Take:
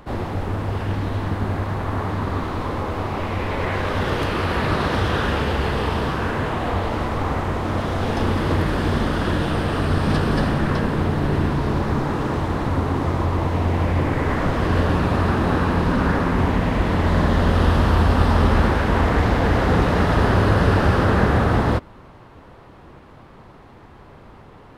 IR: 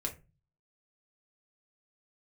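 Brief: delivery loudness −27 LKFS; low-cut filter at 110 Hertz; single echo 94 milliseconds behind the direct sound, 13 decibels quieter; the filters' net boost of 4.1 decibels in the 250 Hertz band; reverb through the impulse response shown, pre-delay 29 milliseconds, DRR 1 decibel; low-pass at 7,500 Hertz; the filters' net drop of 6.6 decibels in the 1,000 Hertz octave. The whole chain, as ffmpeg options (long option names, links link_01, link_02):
-filter_complex "[0:a]highpass=110,lowpass=7500,equalizer=frequency=250:width_type=o:gain=6,equalizer=frequency=1000:width_type=o:gain=-9,aecho=1:1:94:0.224,asplit=2[link_01][link_02];[1:a]atrim=start_sample=2205,adelay=29[link_03];[link_02][link_03]afir=irnorm=-1:irlink=0,volume=-2.5dB[link_04];[link_01][link_04]amix=inputs=2:normalize=0,volume=-9.5dB"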